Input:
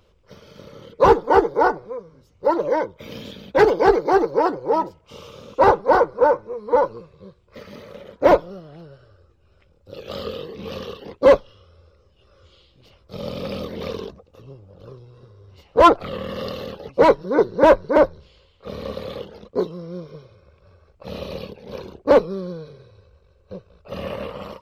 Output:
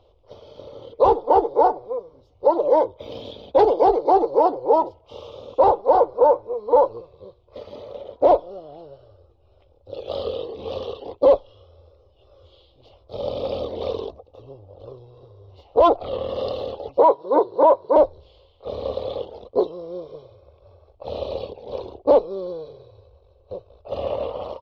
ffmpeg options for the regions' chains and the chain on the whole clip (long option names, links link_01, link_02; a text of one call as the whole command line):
ffmpeg -i in.wav -filter_complex "[0:a]asettb=1/sr,asplit=3[link_01][link_02][link_03];[link_01]atrim=end=16.994[link_04];[link_02]atrim=start=16.99:end=17.96,asetpts=PTS-STARTPTS,afade=type=in:duration=0.004:curve=qsin,afade=type=out:start_time=0.966:duration=0.004:curve=qsin,highpass=170,equalizer=frequency=230:width_type=q:width=4:gain=-8,equalizer=frequency=1000:width_type=q:width=4:gain=9,equalizer=frequency=2600:width_type=q:width=4:gain=-5,lowpass=frequency=5000:width=0.5412,lowpass=frequency=5000:width=1.3066,acrossover=split=2900[link_05][link_06];[link_06]acompressor=threshold=-44dB:ratio=4:attack=1:release=60[link_07];[link_05][link_07]amix=inputs=2:normalize=0[link_08];[link_03]atrim=start=17.956[link_09];[link_04][link_08]acrossfade=duration=0.004:curve1=hsin:curve2=qsin[link_10];[link_10][link_09]acrossfade=duration=0.004:curve1=qsin:curve2=hsin,firequalizer=gain_entry='entry(110,0);entry(170,-15);entry(270,-1);entry(730,9);entry(1600,-16);entry(3400,1);entry(8000,-19)':delay=0.05:min_phase=1,alimiter=limit=-6.5dB:level=0:latency=1:release=278" out.wav